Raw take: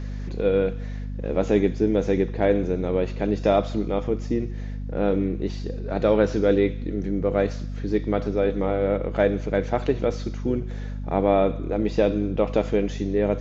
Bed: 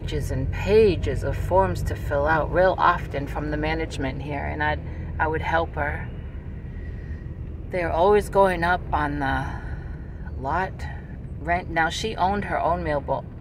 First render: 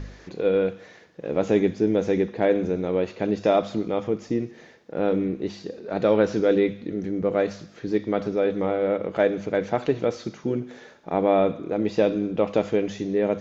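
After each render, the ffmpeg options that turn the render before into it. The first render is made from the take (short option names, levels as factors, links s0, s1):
-af "bandreject=f=50:t=h:w=4,bandreject=f=100:t=h:w=4,bandreject=f=150:t=h:w=4,bandreject=f=200:t=h:w=4,bandreject=f=250:t=h:w=4"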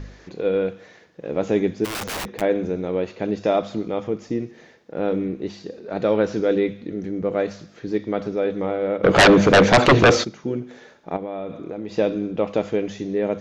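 -filter_complex "[0:a]asplit=3[s0][s1][s2];[s0]afade=t=out:st=1.84:d=0.02[s3];[s1]aeval=exprs='(mod(15*val(0)+1,2)-1)/15':c=same,afade=t=in:st=1.84:d=0.02,afade=t=out:st=2.4:d=0.02[s4];[s2]afade=t=in:st=2.4:d=0.02[s5];[s3][s4][s5]amix=inputs=3:normalize=0,asplit=3[s6][s7][s8];[s6]afade=t=out:st=9.03:d=0.02[s9];[s7]aeval=exprs='0.422*sin(PI/2*5.62*val(0)/0.422)':c=same,afade=t=in:st=9.03:d=0.02,afade=t=out:st=10.23:d=0.02[s10];[s8]afade=t=in:st=10.23:d=0.02[s11];[s9][s10][s11]amix=inputs=3:normalize=0,asettb=1/sr,asplit=3[s12][s13][s14];[s12]atrim=end=11.164[s15];[s13]atrim=start=11.16:end=11.93,asetpts=PTS-STARTPTS,afade=t=in:d=0.004:c=qsin,afade=t=out:st=0.766:d=0.004:c=qsin,acompressor=threshold=0.0501:ratio=6:attack=3.2:release=140:knee=1:detection=peak[s16];[s14]atrim=start=11.926[s17];[s15][s16]acrossfade=d=0.004:c1=hsin:c2=qsin[s18];[s18][s17]acrossfade=d=0.004:c1=qsin:c2=hsin"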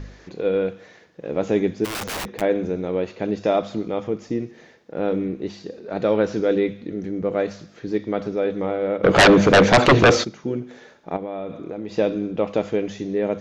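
-af anull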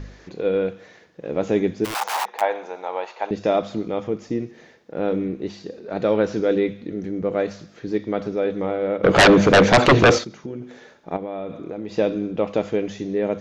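-filter_complex "[0:a]asettb=1/sr,asplit=3[s0][s1][s2];[s0]atrim=end=1.944[s3];[s1]atrim=start=1.94:end=3.31,asetpts=PTS-STARTPTS,afade=t=in:d=0.004:c=qsin,afade=t=out:st=1.366:d=0.004:c=qsin,highpass=f=850:t=q:w=5[s4];[s2]atrim=start=3.306[s5];[s3][s4]acrossfade=d=0.004:c1=hsin:c2=qsin[s6];[s6][s5]acrossfade=d=0.004:c1=qsin:c2=hsin,asettb=1/sr,asplit=3[s7][s8][s9];[s7]atrim=end=10.184[s10];[s8]atrim=start=10.18:end=11.12,asetpts=PTS-STARTPTS,afade=t=in:d=0.004:c=qsin,afade=t=out:st=0.936:d=0.004:c=qsin,acompressor=threshold=0.0447:ratio=6:attack=3.2:release=140:knee=1:detection=peak[s11];[s9]atrim=start=11.116[s12];[s10][s11]acrossfade=d=0.004:c1=hsin:c2=qsin[s13];[s13][s12]acrossfade=d=0.004:c1=qsin:c2=hsin"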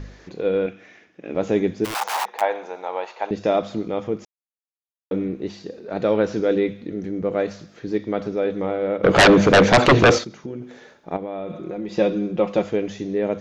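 -filter_complex "[0:a]asettb=1/sr,asplit=3[s0][s1][s2];[s0]atrim=end=0.664[s3];[s1]atrim=start=0.66:end=1.35,asetpts=PTS-STARTPTS,afade=t=in:d=0.004:c=qsin,afade=t=out:st=0.686:d=0.004:c=qsin,highpass=110,equalizer=f=150:t=q:w=4:g=-10,equalizer=f=280:t=q:w=4:g=4,equalizer=f=500:t=q:w=4:g=-9,equalizer=f=960:t=q:w=4:g=-6,equalizer=f=2400:t=q:w=4:g=7,equalizer=f=4300:t=q:w=4:g=-9,lowpass=f=6500:w=0.5412,lowpass=f=6500:w=1.3066[s4];[s2]atrim=start=1.346[s5];[s3][s4]acrossfade=d=0.004:c1=hsin:c2=qsin[s6];[s6][s5]acrossfade=d=0.004:c1=qsin:c2=hsin,asettb=1/sr,asplit=3[s7][s8][s9];[s7]atrim=end=11.474[s10];[s8]atrim=start=11.47:end=12.64,asetpts=PTS-STARTPTS,afade=t=in:d=0.004:c=qsin,afade=t=out:st=1.166:d=0.004:c=qsin,aecho=1:1:5.6:0.65,atrim=end_sample=51597[s11];[s9]atrim=start=12.636[s12];[s10][s11]acrossfade=d=0.004:c1=hsin:c2=qsin[s13];[s13][s12]acrossfade=d=0.004:c1=qsin:c2=hsin,asplit=3[s14][s15][s16];[s14]atrim=end=4.25,asetpts=PTS-STARTPTS,afade=t=out:st=4.246:d=0.004:c=hsin[s17];[s15]atrim=start=4.25:end=5.11,asetpts=PTS-STARTPTS,volume=0[s18];[s16]atrim=start=5.11,asetpts=PTS-STARTPTS,afade=t=in:d=0.004:c=hsin[s19];[s17][s18][s19]concat=n=3:v=0:a=1"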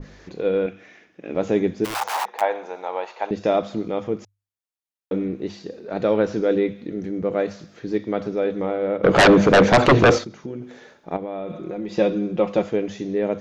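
-af "bandreject=f=50:t=h:w=6,bandreject=f=100:t=h:w=6,adynamicequalizer=threshold=0.0224:dfrequency=1800:dqfactor=0.7:tfrequency=1800:tqfactor=0.7:attack=5:release=100:ratio=0.375:range=2:mode=cutabove:tftype=highshelf"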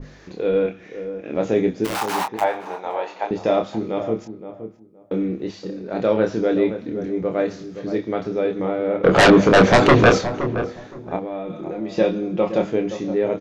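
-filter_complex "[0:a]asplit=2[s0][s1];[s1]adelay=27,volume=0.562[s2];[s0][s2]amix=inputs=2:normalize=0,asplit=2[s3][s4];[s4]adelay=520,lowpass=f=1100:p=1,volume=0.316,asplit=2[s5][s6];[s6]adelay=520,lowpass=f=1100:p=1,volume=0.21,asplit=2[s7][s8];[s8]adelay=520,lowpass=f=1100:p=1,volume=0.21[s9];[s3][s5][s7][s9]amix=inputs=4:normalize=0"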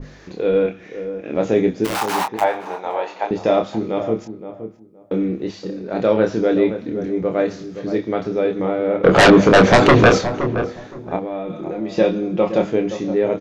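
-af "volume=1.33,alimiter=limit=0.794:level=0:latency=1"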